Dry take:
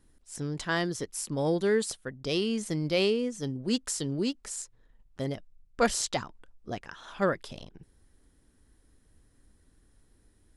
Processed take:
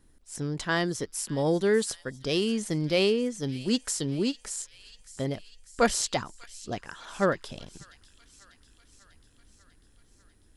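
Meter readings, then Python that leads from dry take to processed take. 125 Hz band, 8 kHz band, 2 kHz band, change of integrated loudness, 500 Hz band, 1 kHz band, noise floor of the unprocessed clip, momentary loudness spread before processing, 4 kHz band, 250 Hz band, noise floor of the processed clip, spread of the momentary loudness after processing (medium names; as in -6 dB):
+2.0 dB, +2.0 dB, +2.0 dB, +2.0 dB, +2.0 dB, +2.0 dB, -65 dBFS, 14 LU, +2.0 dB, +2.0 dB, -61 dBFS, 18 LU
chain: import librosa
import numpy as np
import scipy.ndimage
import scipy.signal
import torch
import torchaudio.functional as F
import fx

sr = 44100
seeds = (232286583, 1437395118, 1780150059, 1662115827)

y = fx.echo_wet_highpass(x, sr, ms=595, feedback_pct=65, hz=2200.0, wet_db=-16.5)
y = y * 10.0 ** (2.0 / 20.0)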